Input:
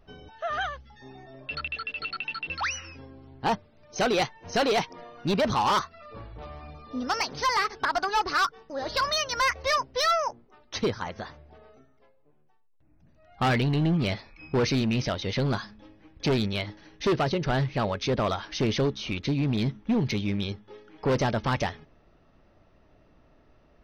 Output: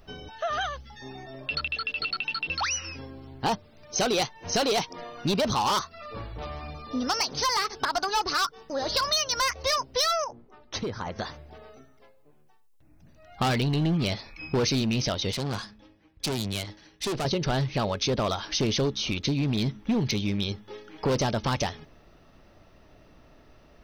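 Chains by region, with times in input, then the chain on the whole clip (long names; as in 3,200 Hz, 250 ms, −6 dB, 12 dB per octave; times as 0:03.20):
0:10.24–0:11.19: high-shelf EQ 2,100 Hz −11.5 dB + downward compressor, threshold −32 dBFS
0:15.32–0:17.25: tube saturation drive 29 dB, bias 0.7 + multiband upward and downward expander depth 40%
whole clip: high-shelf EQ 3,700 Hz +10 dB; downward compressor 2 to 1, threshold −31 dBFS; dynamic equaliser 1,900 Hz, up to −5 dB, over −44 dBFS, Q 1.5; level +4.5 dB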